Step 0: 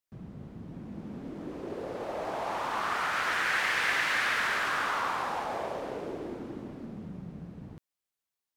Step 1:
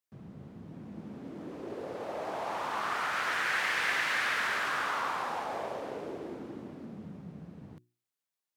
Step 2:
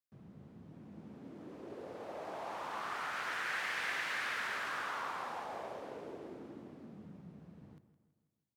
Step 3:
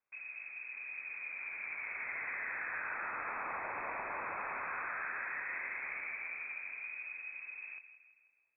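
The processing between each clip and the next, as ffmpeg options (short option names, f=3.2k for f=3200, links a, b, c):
-af "highpass=89,bandreject=f=60:t=h:w=6,bandreject=f=120:t=h:w=6,bandreject=f=180:t=h:w=6,bandreject=f=240:t=h:w=6,bandreject=f=300:t=h:w=6,bandreject=f=360:t=h:w=6,volume=-2dB"
-filter_complex "[0:a]asplit=2[a][b];[b]adelay=163,lowpass=f=4.2k:p=1,volume=-13.5dB,asplit=2[c][d];[d]adelay=163,lowpass=f=4.2k:p=1,volume=0.51,asplit=2[e][f];[f]adelay=163,lowpass=f=4.2k:p=1,volume=0.51,asplit=2[g][h];[h]adelay=163,lowpass=f=4.2k:p=1,volume=0.51,asplit=2[i][j];[j]adelay=163,lowpass=f=4.2k:p=1,volume=0.51[k];[a][c][e][g][i][k]amix=inputs=6:normalize=0,volume=-7.5dB"
-filter_complex "[0:a]acrossover=split=300|930[a][b][c];[a]acompressor=threshold=-56dB:ratio=4[d];[b]acompressor=threshold=-57dB:ratio=4[e];[c]acompressor=threshold=-53dB:ratio=4[f];[d][e][f]amix=inputs=3:normalize=0,lowpass=f=2.3k:t=q:w=0.5098,lowpass=f=2.3k:t=q:w=0.6013,lowpass=f=2.3k:t=q:w=0.9,lowpass=f=2.3k:t=q:w=2.563,afreqshift=-2700,volume=10.5dB"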